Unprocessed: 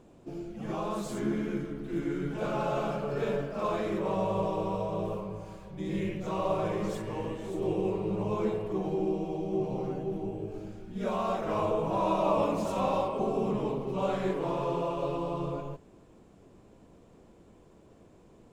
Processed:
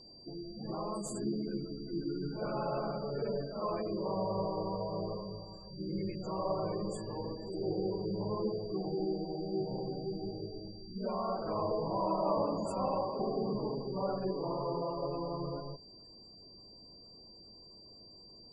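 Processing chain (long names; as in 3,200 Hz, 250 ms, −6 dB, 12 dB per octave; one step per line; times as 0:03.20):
high shelf with overshoot 6,100 Hz +9 dB, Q 1.5
gate on every frequency bin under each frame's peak −20 dB strong
steady tone 4,700 Hz −49 dBFS
level −4.5 dB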